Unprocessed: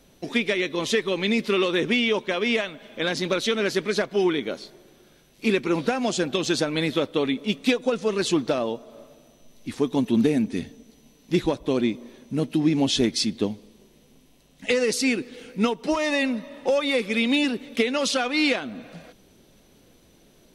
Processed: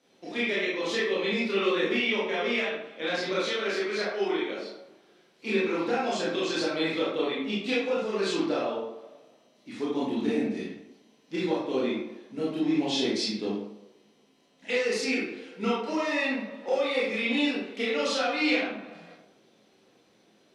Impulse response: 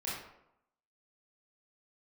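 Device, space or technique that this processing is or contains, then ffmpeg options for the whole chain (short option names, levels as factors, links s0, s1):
supermarket ceiling speaker: -filter_complex "[0:a]highpass=250,lowpass=6900[s0];[1:a]atrim=start_sample=2205[s1];[s0][s1]afir=irnorm=-1:irlink=0,asettb=1/sr,asplit=3[s2][s3][s4];[s2]atrim=end=3.494[s5];[s3]atrim=start=3.49:end=4.59,asetpts=PTS-STARTPTS,afade=t=in:d=0.004:c=qsin,afade=t=out:st=1.096:d=0.004:c=qsin,lowshelf=f=190:g=-11.5[s6];[s4]atrim=start=4.586[s7];[s5][s6]acrossfade=d=0.004:c1=hsin:c2=qsin[s8];[s8][s7]acrossfade=d=0.004:c1=qsin:c2=hsin,volume=0.531"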